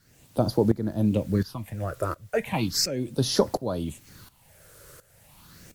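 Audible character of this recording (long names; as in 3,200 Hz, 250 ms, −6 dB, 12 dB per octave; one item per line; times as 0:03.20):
phaser sweep stages 6, 0.36 Hz, lowest notch 220–2,600 Hz
a quantiser's noise floor 10 bits, dither triangular
tremolo saw up 1.4 Hz, depth 85%
MP3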